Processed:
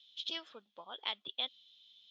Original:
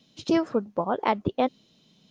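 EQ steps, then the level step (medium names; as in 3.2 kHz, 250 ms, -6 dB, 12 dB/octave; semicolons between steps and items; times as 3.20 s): band-pass filter 3.4 kHz, Q 11; +10.5 dB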